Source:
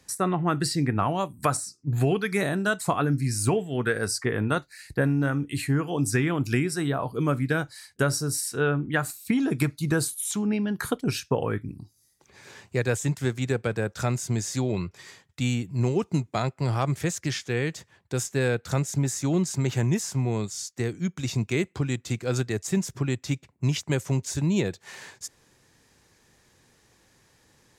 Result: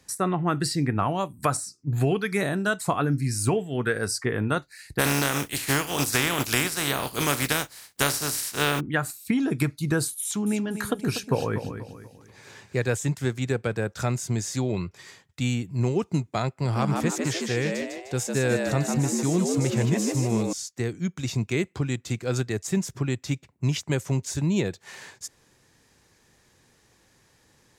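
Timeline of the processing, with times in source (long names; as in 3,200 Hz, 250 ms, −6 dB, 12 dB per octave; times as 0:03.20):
0:04.98–0:08.79: compressing power law on the bin magnitudes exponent 0.36
0:10.22–0:12.95: repeating echo 242 ms, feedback 38%, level −10 dB
0:16.49–0:20.53: echo with shifted repeats 152 ms, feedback 46%, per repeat +88 Hz, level −4 dB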